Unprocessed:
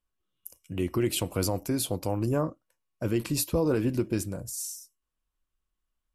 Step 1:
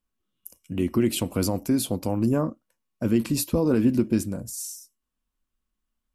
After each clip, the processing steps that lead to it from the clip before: bell 230 Hz +11 dB 0.51 oct; gain +1 dB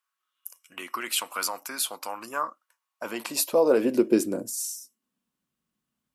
high-pass sweep 1200 Hz -> 140 Hz, 2.66–5.57; gain +2.5 dB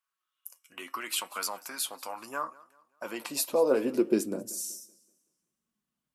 flange 0.7 Hz, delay 4.3 ms, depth 4.2 ms, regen +62%; warbling echo 0.19 s, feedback 38%, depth 114 cents, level -22 dB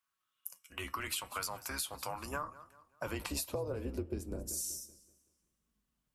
octaver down 2 oct, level +3 dB; compressor 16:1, threshold -35 dBFS, peak gain reduction 18.5 dB; gain +1 dB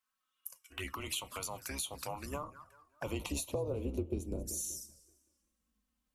envelope flanger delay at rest 3.9 ms, full sweep at -36.5 dBFS; gain +2.5 dB

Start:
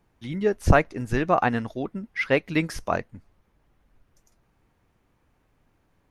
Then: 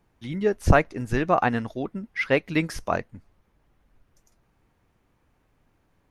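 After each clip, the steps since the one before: nothing audible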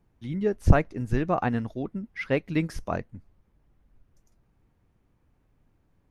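low shelf 380 Hz +9.5 dB; gain -7.5 dB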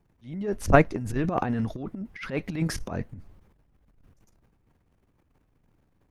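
transient shaper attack -11 dB, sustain +12 dB; gain -1.5 dB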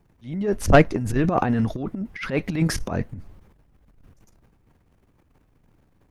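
soft clip -10.5 dBFS, distortion -14 dB; gain +6 dB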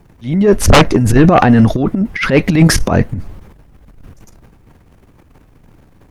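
sine folder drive 8 dB, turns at -4.5 dBFS; gain +3 dB

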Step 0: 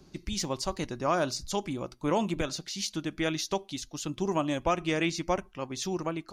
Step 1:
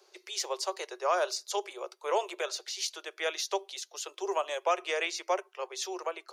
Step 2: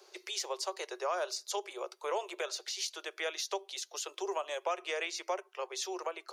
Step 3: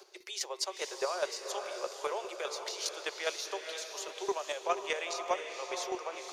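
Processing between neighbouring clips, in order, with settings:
steep high-pass 380 Hz 96 dB/oct
compressor 2:1, threshold -42 dBFS, peak gain reduction 10.5 dB; gain +3.5 dB
chopper 4.9 Hz, depth 60%, duty 15%; diffused feedback echo 0.484 s, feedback 46%, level -6.5 dB; gain +5 dB

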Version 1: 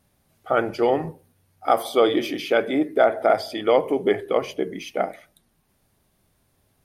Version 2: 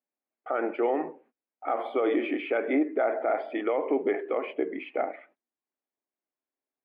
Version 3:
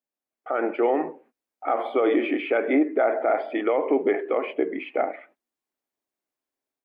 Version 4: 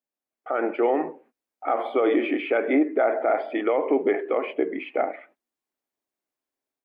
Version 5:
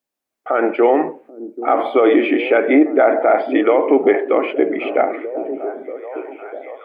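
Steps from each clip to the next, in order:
elliptic band-pass 270–2400 Hz, stop band 40 dB; limiter -17 dBFS, peak gain reduction 11.5 dB; gate -57 dBFS, range -25 dB
AGC gain up to 6 dB; gain -1.5 dB
nothing audible
delay with a stepping band-pass 0.785 s, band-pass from 260 Hz, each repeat 0.7 oct, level -9 dB; gain +8.5 dB

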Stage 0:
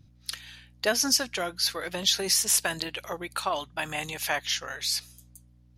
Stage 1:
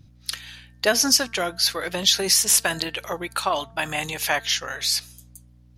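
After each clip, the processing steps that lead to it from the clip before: de-hum 225.5 Hz, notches 8; gain +5.5 dB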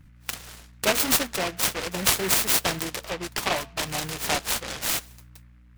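low shelf 120 Hz +5 dB; flange 1.6 Hz, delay 4 ms, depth 2.4 ms, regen -60%; noise-modulated delay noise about 1600 Hz, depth 0.18 ms; gain +1.5 dB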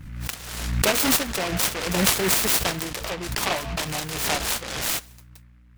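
backwards sustainer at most 44 dB/s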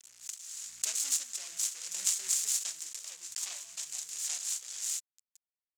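bit-crush 6-bit; band-pass 7100 Hz, Q 3.9

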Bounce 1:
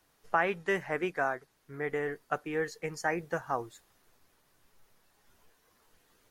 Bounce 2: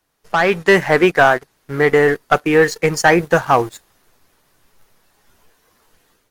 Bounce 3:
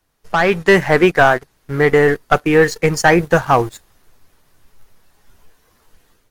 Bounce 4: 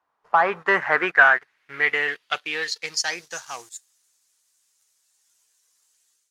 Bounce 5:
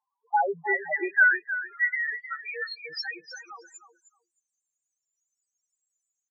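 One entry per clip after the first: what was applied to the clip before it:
sample leveller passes 2; AGC gain up to 10 dB; gain +3.5 dB
low shelf 110 Hz +10.5 dB
band-pass sweep 1000 Hz -> 7400 Hz, 0.38–3.71; gain +3 dB
loudest bins only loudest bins 2; feedback echo 0.31 s, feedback 15%, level -12 dB

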